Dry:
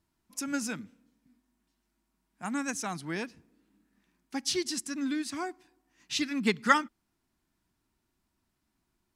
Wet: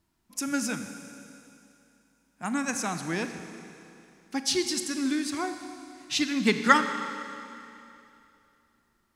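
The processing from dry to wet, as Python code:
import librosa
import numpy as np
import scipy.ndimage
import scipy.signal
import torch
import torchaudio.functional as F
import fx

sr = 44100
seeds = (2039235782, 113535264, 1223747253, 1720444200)

y = fx.rev_schroeder(x, sr, rt60_s=2.8, comb_ms=30, drr_db=7.5)
y = y * librosa.db_to_amplitude(3.5)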